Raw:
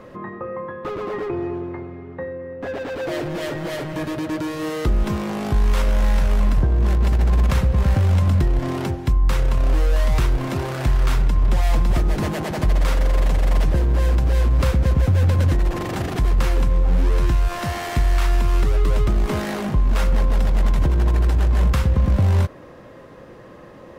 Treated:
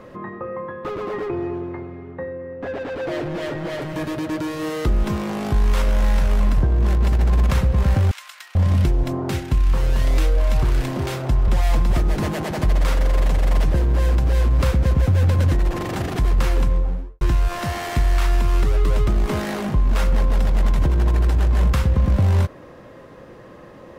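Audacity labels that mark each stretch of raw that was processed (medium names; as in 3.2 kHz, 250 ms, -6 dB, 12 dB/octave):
2.110000	3.820000	low-pass 3.7 kHz 6 dB/octave
8.110000	11.480000	bands offset in time highs, lows 440 ms, split 1.3 kHz
16.620000	17.210000	studio fade out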